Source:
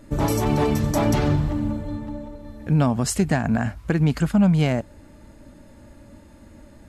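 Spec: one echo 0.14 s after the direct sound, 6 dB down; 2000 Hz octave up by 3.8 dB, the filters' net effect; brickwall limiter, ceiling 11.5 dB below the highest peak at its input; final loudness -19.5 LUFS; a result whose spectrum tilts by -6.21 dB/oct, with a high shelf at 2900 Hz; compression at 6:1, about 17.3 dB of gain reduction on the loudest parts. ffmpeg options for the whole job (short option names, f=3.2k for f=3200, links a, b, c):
-af "equalizer=f=2k:t=o:g=8,highshelf=f=2.9k:g=-9,acompressor=threshold=-34dB:ratio=6,alimiter=level_in=7dB:limit=-24dB:level=0:latency=1,volume=-7dB,aecho=1:1:140:0.501,volume=21dB"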